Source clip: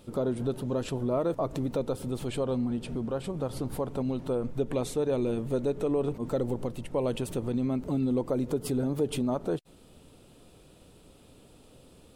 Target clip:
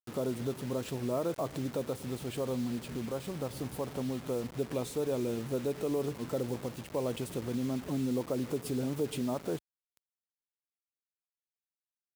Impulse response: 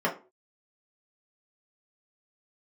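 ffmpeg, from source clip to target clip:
-af "acrusher=bits=6:mix=0:aa=0.000001,highpass=61,volume=-4.5dB"

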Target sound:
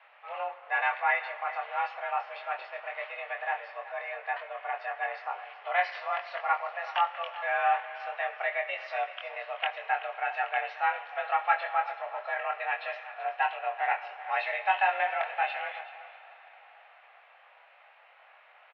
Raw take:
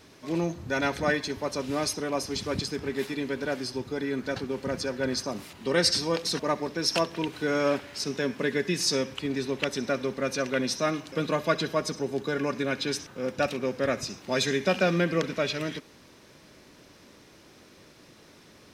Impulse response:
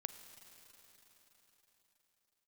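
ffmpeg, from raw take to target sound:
-filter_complex "[0:a]aecho=1:1:380:0.168,asplit=2[a][b];[1:a]atrim=start_sample=2205,adelay=23[c];[b][c]afir=irnorm=-1:irlink=0,volume=-1dB[d];[a][d]amix=inputs=2:normalize=0,highpass=f=520:t=q:w=0.5412,highpass=f=520:t=q:w=1.307,lowpass=f=2.6k:t=q:w=0.5176,lowpass=f=2.6k:t=q:w=0.7071,lowpass=f=2.6k:t=q:w=1.932,afreqshift=200"

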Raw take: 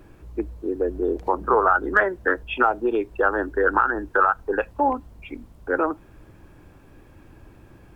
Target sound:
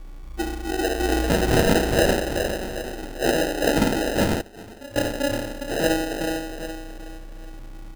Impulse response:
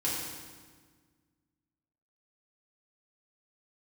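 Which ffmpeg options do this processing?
-filter_complex "[0:a]asettb=1/sr,asplit=3[a][b][c];[a]atrim=end=0.994[d];[b]atrim=start=0.99:end=1.55,asetpts=PTS-STARTPTS,afade=t=in:d=0.004:c=qsin,afade=t=out:st=0.556:d=0.004:c=qsin,lowshelf=f=260:g=10.5[e];[c]atrim=start=1.546[f];[d][e]acrossfade=d=0.004:c1=hsin:c2=qsin[g];[g][f]acrossfade=d=0.004:c1=qsin:c2=hsin,asettb=1/sr,asplit=3[h][i][j];[h]atrim=end=2.094[k];[i]atrim=start=2.09:end=3.03,asetpts=PTS-STARTPTS,afade=t=in:d=0.004:c=qsin,afade=t=out:st=0.936:d=0.004:c=qsin,acompressor=threshold=-38dB:ratio=2.5[l];[j]atrim=start=3.026[m];[k][l]acrossfade=d=0.004:c1=hsin:c2=qsin[n];[n][m]acrossfade=d=0.004:c1=qsin:c2=hsin,aecho=1:1:394|788|1182|1576|1970:0.531|0.202|0.0767|0.0291|0.0111[o];[1:a]atrim=start_sample=2205,asetrate=88200,aresample=44100[p];[o][p]afir=irnorm=-1:irlink=0,aeval=exprs='val(0)+0.0251*sin(2*PI*1100*n/s)':c=same,asettb=1/sr,asplit=3[q][r][s];[q]atrim=end=4.414[t];[r]atrim=start=4.41:end=4.96,asetpts=PTS-STARTPTS,afade=t=in:d=0.004:c=qsin,afade=t=out:st=0.546:d=0.004:c=qsin,aderivative[u];[s]atrim=start=4.956[v];[t][u]acrossfade=d=0.004:c1=hsin:c2=qsin[w];[w][v]acrossfade=d=0.004:c1=qsin:c2=hsin,acrusher=samples=39:mix=1:aa=0.000001,volume=-2.5dB"

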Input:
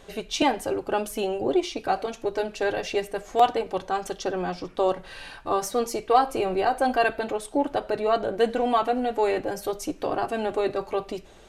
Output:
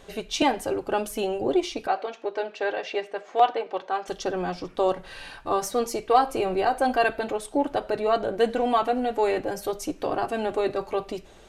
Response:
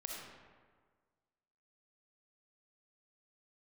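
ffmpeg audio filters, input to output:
-filter_complex "[0:a]asettb=1/sr,asplit=3[a][b][c];[a]atrim=end=1.874[d];[b]atrim=start=1.87:end=4.08,asetpts=PTS-STARTPTS,afade=t=in:d=0.004:c=qsin,afade=t=out:st=2.206:d=0.004:c=qsin,highpass=400,lowpass=3.6k[e];[c]atrim=start=4.076[f];[d][e]acrossfade=d=0.004:c1=hsin:c2=qsin[g];[g][f]acrossfade=d=0.004:c1=qsin:c2=hsin"

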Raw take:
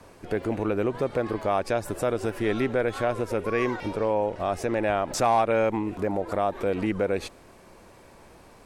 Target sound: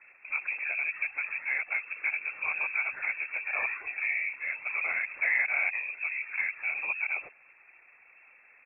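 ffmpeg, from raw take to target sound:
-af "asetrate=37084,aresample=44100,atempo=1.18921,afftfilt=real='hypot(re,im)*cos(2*PI*random(0))':imag='hypot(re,im)*sin(2*PI*random(1))':win_size=512:overlap=0.75,lowpass=f=2.3k:t=q:w=0.5098,lowpass=f=2.3k:t=q:w=0.6013,lowpass=f=2.3k:t=q:w=0.9,lowpass=f=2.3k:t=q:w=2.563,afreqshift=-2700"

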